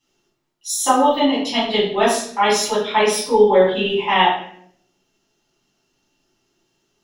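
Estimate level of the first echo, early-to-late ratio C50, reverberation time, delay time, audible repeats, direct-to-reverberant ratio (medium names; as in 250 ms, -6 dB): no echo, 3.5 dB, 0.65 s, no echo, no echo, -10.0 dB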